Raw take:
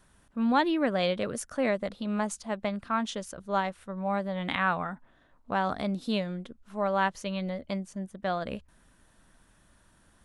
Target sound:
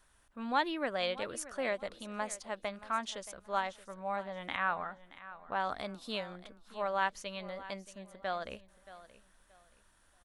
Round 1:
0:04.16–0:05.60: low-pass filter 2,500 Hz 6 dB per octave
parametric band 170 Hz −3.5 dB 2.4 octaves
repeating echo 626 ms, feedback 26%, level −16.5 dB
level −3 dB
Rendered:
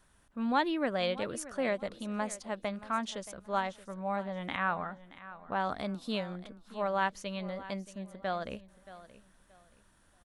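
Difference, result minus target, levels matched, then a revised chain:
125 Hz band +6.5 dB
0:04.16–0:05.60: low-pass filter 2,500 Hz 6 dB per octave
parametric band 170 Hz −12.5 dB 2.4 octaves
repeating echo 626 ms, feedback 26%, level −16.5 dB
level −3 dB

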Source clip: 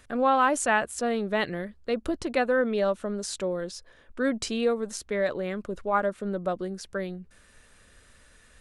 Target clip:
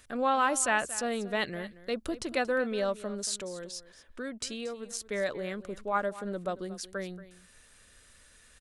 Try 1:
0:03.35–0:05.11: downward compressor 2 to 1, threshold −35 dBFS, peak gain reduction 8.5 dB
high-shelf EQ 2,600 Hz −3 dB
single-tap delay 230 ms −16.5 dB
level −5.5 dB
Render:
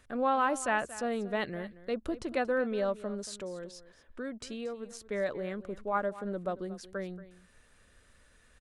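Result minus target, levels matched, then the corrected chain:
4,000 Hz band −6.0 dB
0:03.35–0:05.11: downward compressor 2 to 1, threshold −35 dBFS, peak gain reduction 8.5 dB
high-shelf EQ 2,600 Hz +8.5 dB
single-tap delay 230 ms −16.5 dB
level −5.5 dB

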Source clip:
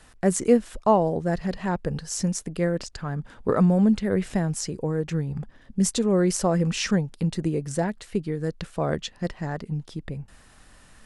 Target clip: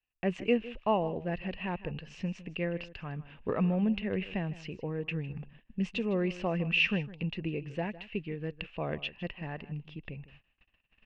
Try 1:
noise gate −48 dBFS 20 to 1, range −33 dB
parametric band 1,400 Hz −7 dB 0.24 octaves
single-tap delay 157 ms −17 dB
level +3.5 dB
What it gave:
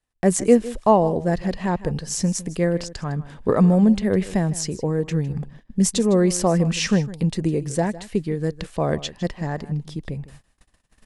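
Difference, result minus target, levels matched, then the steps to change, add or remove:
2,000 Hz band −10.0 dB
add after noise gate: transistor ladder low-pass 2,800 Hz, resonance 85%

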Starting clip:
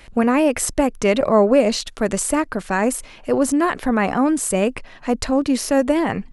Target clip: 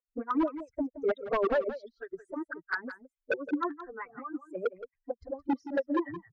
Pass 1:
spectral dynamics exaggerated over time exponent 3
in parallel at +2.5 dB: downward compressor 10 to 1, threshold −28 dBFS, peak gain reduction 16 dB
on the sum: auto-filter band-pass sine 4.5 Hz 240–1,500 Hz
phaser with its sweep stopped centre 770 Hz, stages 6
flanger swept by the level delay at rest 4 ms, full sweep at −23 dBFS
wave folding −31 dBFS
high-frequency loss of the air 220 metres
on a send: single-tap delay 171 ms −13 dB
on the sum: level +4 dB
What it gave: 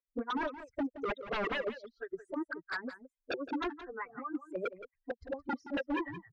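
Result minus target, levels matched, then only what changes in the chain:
wave folding: distortion +13 dB
change: wave folding −24 dBFS

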